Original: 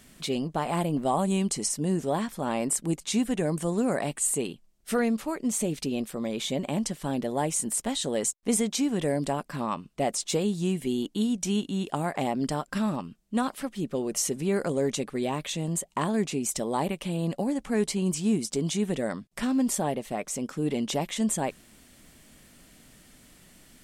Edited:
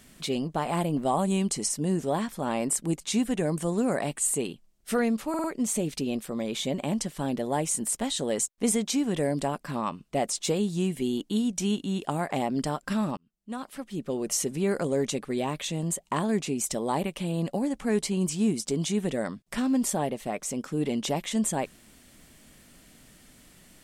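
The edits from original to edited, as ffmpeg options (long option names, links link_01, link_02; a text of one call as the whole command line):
ffmpeg -i in.wav -filter_complex "[0:a]asplit=5[link_01][link_02][link_03][link_04][link_05];[link_01]atrim=end=5.342[link_06];[link_02]atrim=start=5.288:end=5.342[link_07];[link_03]atrim=start=5.288:end=5.342[link_08];[link_04]atrim=start=5.288:end=13.02,asetpts=PTS-STARTPTS,afade=type=out:start_time=7.728:duration=0.004:curve=hsin[link_09];[link_05]atrim=start=13.02,asetpts=PTS-STARTPTS,afade=type=in:duration=1.07[link_10];[link_06][link_07]acrossfade=duration=0.004:curve1=hsin:curve2=hsin[link_11];[link_11][link_08]acrossfade=duration=0.004:curve1=hsin:curve2=hsin[link_12];[link_09][link_10]concat=n=2:v=0:a=1[link_13];[link_12][link_13]acrossfade=duration=0.004:curve1=hsin:curve2=hsin" out.wav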